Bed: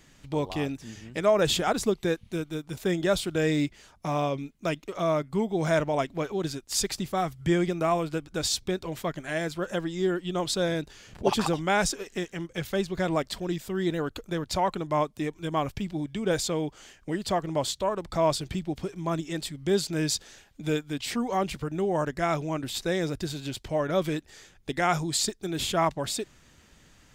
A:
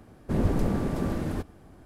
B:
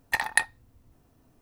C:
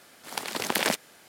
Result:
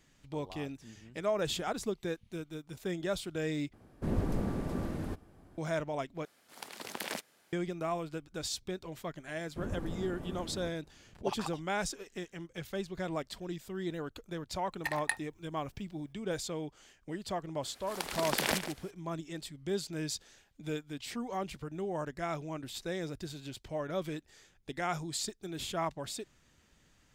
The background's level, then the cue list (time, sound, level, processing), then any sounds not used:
bed −9.5 dB
0:03.73: overwrite with A −7 dB
0:06.25: overwrite with C −13 dB
0:09.27: mix in A −14 dB + parametric band 4,600 Hz −4.5 dB
0:14.72: mix in B −10 dB
0:17.63: mix in C −5.5 dB + single-tap delay 144 ms −11 dB

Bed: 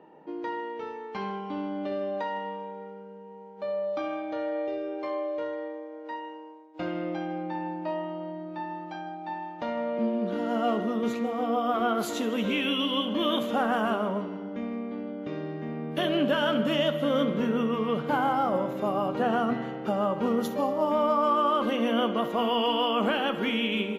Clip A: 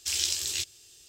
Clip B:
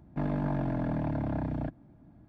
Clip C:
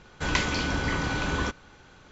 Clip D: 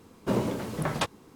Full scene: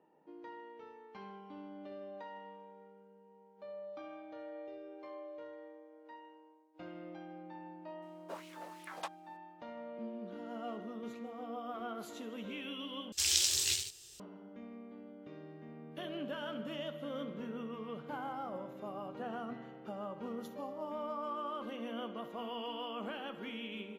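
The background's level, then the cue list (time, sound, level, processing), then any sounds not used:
bed −16 dB
0:08.02: mix in D −16 dB + auto-filter high-pass sine 2.8 Hz 570–2,700 Hz
0:13.12: overwrite with A −2 dB + delay with pitch and tempo change per echo 108 ms, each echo +1 semitone, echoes 2, each echo −6 dB
not used: B, C

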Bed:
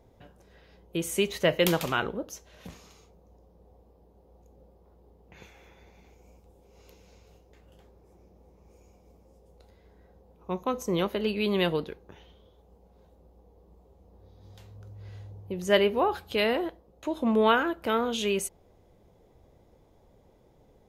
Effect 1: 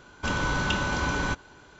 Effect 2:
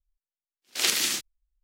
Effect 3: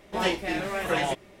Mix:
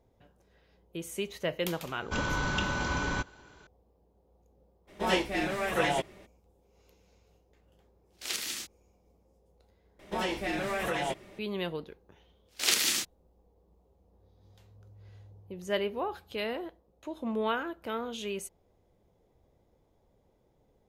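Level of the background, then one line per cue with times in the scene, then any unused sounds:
bed −8.5 dB
0:01.88: mix in 1 −4 dB
0:04.87: mix in 3 −1.5 dB, fades 0.02 s
0:07.46: mix in 2 −10.5 dB
0:09.99: overwrite with 3 −0.5 dB + downward compressor 4 to 1, threshold −27 dBFS
0:11.84: mix in 2 −2 dB

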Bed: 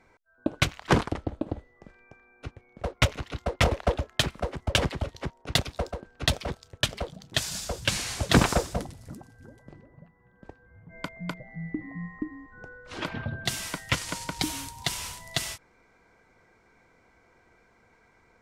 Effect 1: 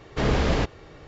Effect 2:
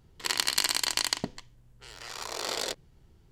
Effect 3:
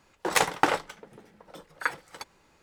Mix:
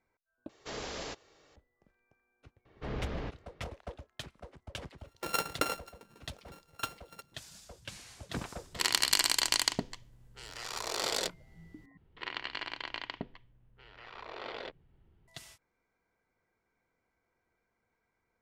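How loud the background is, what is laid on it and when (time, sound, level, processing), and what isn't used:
bed −19 dB
0:00.49: overwrite with 1 −15 dB + bass and treble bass −13 dB, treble +13 dB
0:02.65: mix in 1 −15 dB + high-frequency loss of the air 160 metres
0:04.98: mix in 3 −9 dB + samples sorted by size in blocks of 32 samples
0:08.55: mix in 2 −0.5 dB
0:11.97: overwrite with 2 −6.5 dB + low-pass filter 3,100 Hz 24 dB per octave

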